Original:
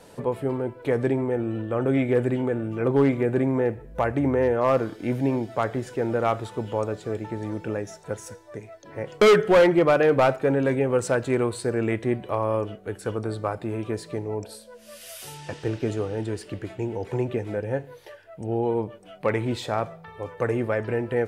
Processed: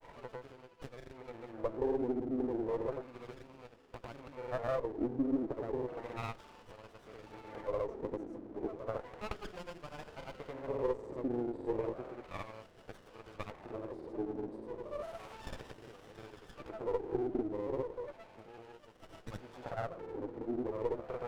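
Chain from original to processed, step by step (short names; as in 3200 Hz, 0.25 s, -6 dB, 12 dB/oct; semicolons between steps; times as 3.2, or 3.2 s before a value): compressor 10:1, threshold -33 dBFS, peak gain reduction 18.5 dB; diffused feedback echo 0.851 s, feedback 75%, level -14.5 dB; wah 0.33 Hz 290–2800 Hz, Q 3.2; grains, pitch spread up and down by 0 st; running maximum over 17 samples; gain +8.5 dB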